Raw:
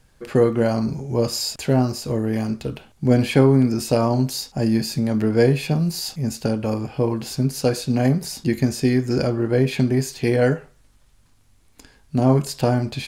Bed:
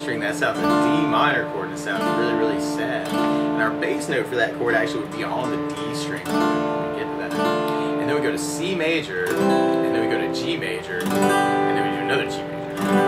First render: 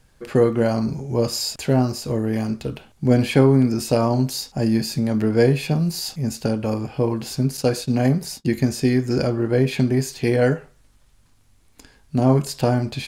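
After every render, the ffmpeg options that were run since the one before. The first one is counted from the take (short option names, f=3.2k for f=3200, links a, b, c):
-filter_complex "[0:a]asettb=1/sr,asplit=3[a][b][c];[a]atrim=end=7.574[d];[b]atrim=start=7.57:end=8.48,asetpts=PTS-STARTPTS,afade=t=in:d=0.004:c=qsin,afade=t=out:st=0.906:d=0.004:c=qsin,agate=range=-33dB:threshold=-31dB:ratio=3:release=100:detection=peak[e];[c]atrim=start=8.476[f];[d][e]acrossfade=d=0.004:c1=hsin:c2=qsin[g];[g][f]acrossfade=d=0.004:c1=qsin:c2=hsin"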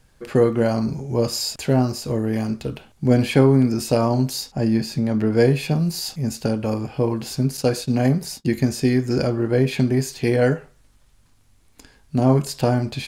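-filter_complex "[0:a]asettb=1/sr,asplit=3[a][b][c];[a]atrim=end=4.514[d];[b]atrim=start=4.51:end=5.32,asetpts=PTS-STARTPTS,afade=t=in:d=0.004:c=qsin,afade=t=out:st=0.806:d=0.004:c=qsin,highshelf=f=5.6k:g=-8.5[e];[c]atrim=start=5.316[f];[d][e]acrossfade=d=0.004:c1=hsin:c2=qsin[g];[g][f]acrossfade=d=0.004:c1=qsin:c2=hsin"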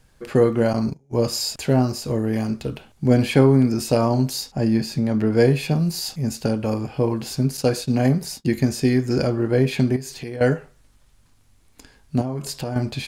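-filter_complex "[0:a]asettb=1/sr,asplit=3[a][b][c];[a]atrim=end=0.734[d];[b]atrim=start=0.73:end=1.25,asetpts=PTS-STARTPTS,afade=t=in:d=0.004:c=qsin,afade=t=out:st=0.516:d=0.004:c=qsin,agate=range=-28dB:threshold=-26dB:ratio=16:release=100:detection=peak[e];[c]atrim=start=1.246[f];[d][e]acrossfade=d=0.004:c1=hsin:c2=qsin[g];[g][f]acrossfade=d=0.004:c1=qsin:c2=hsin,asettb=1/sr,asplit=3[h][i][j];[h]atrim=end=9.964[k];[i]atrim=start=9.96:end=10.41,asetpts=PTS-STARTPTS,afade=t=in:d=0.004:c=qsin,afade=t=out:st=0.446:d=0.004:c=qsin,acompressor=threshold=-29dB:ratio=5:attack=3.2:release=140:knee=1:detection=peak[l];[j]atrim=start=10.406[m];[k][l]acrossfade=d=0.004:c1=hsin:c2=qsin[n];[n][m]acrossfade=d=0.004:c1=qsin:c2=hsin,asettb=1/sr,asplit=3[o][p][q];[o]atrim=end=12.214[r];[p]atrim=start=12.21:end=12.76,asetpts=PTS-STARTPTS,afade=t=in:d=0.004:c=qsin,afade=t=out:st=0.546:d=0.004:c=qsin,acompressor=threshold=-24dB:ratio=5:attack=3.2:release=140:knee=1:detection=peak[s];[q]atrim=start=12.756[t];[r][s]acrossfade=d=0.004:c1=hsin:c2=qsin[u];[u][t]acrossfade=d=0.004:c1=qsin:c2=hsin"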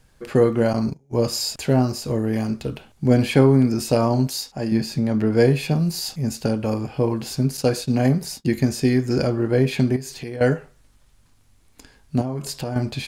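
-filter_complex "[0:a]asettb=1/sr,asplit=3[a][b][c];[a]atrim=end=4.274[d];[b]atrim=start=4.27:end=4.72,asetpts=PTS-STARTPTS,afade=t=in:d=0.004:c=qsin,afade=t=out:st=0.446:d=0.004:c=qsin,lowshelf=f=350:g=-8[e];[c]atrim=start=4.716[f];[d][e]acrossfade=d=0.004:c1=hsin:c2=qsin[g];[g][f]acrossfade=d=0.004:c1=qsin:c2=hsin"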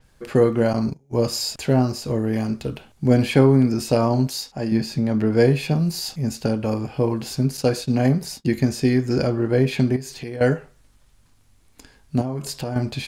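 -af "adynamicequalizer=threshold=0.00631:dfrequency=6600:dqfactor=0.7:tfrequency=6600:tqfactor=0.7:attack=5:release=100:ratio=0.375:range=2:mode=cutabove:tftype=highshelf"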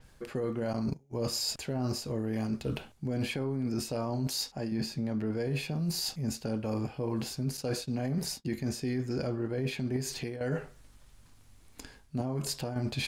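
-af "alimiter=limit=-13dB:level=0:latency=1:release=26,areverse,acompressor=threshold=-30dB:ratio=6,areverse"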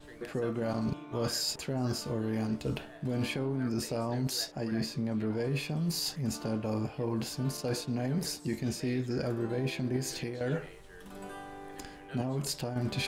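-filter_complex "[1:a]volume=-26dB[a];[0:a][a]amix=inputs=2:normalize=0"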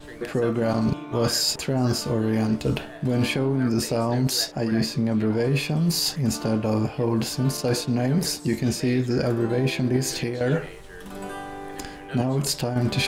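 -af "volume=9.5dB"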